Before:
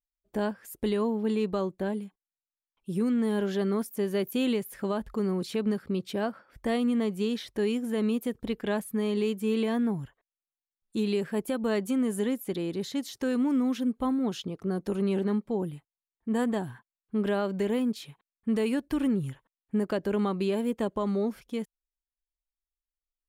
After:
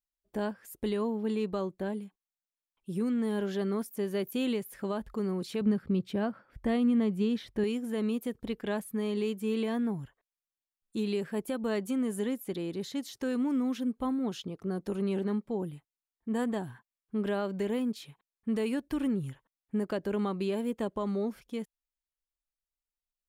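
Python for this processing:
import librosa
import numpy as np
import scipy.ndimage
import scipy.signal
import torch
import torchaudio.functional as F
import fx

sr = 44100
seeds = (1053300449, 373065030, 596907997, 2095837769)

y = fx.bass_treble(x, sr, bass_db=8, treble_db=-6, at=(5.61, 7.64))
y = y * 10.0 ** (-3.5 / 20.0)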